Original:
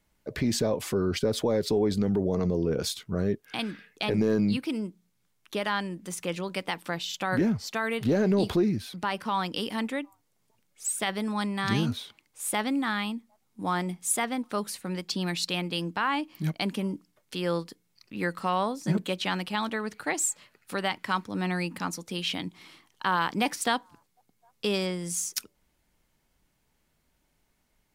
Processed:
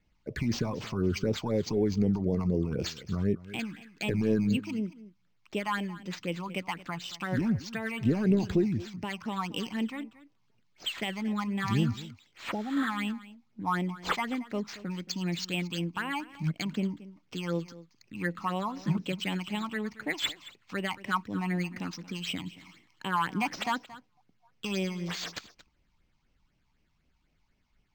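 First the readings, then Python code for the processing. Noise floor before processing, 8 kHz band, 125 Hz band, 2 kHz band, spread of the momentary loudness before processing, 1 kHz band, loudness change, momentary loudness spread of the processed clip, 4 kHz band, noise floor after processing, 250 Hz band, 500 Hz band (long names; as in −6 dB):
−73 dBFS, −12.5 dB, 0.0 dB, −3.0 dB, 9 LU, −4.0 dB, −3.0 dB, 11 LU, −4.0 dB, −71 dBFS, −1.5 dB, −5.0 dB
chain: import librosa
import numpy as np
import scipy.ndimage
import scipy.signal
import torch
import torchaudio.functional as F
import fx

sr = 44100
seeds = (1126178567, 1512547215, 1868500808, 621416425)

y = fx.phaser_stages(x, sr, stages=8, low_hz=450.0, high_hz=1400.0, hz=4.0, feedback_pct=40)
y = y + 10.0 ** (-17.5 / 20.0) * np.pad(y, (int(226 * sr / 1000.0), 0))[:len(y)]
y = fx.spec_repair(y, sr, seeds[0], start_s=12.55, length_s=0.29, low_hz=920.0, high_hz=6200.0, source='both')
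y = np.interp(np.arange(len(y)), np.arange(len(y))[::4], y[::4])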